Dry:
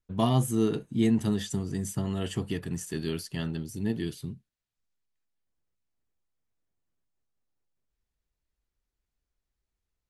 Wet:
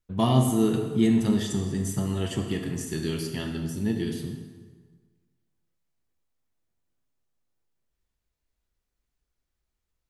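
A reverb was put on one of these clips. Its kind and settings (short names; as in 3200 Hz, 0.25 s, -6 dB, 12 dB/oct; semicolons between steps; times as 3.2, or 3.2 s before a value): plate-style reverb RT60 1.5 s, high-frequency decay 0.75×, DRR 3 dB; gain +1.5 dB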